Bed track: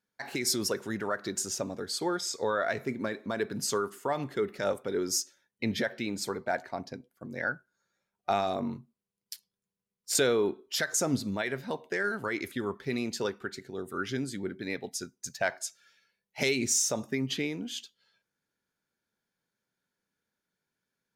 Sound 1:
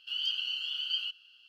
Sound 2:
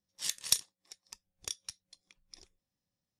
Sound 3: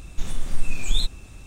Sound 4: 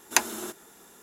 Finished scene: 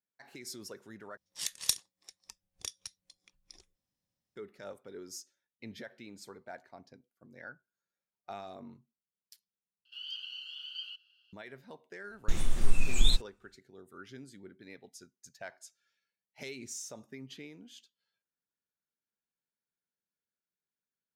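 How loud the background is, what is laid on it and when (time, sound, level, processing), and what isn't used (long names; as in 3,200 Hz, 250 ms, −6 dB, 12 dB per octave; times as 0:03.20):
bed track −15.5 dB
0:01.17: overwrite with 2 −1.5 dB
0:09.85: overwrite with 1 −9.5 dB
0:12.10: mix in 3 −2 dB + noise gate −31 dBFS, range −29 dB
not used: 4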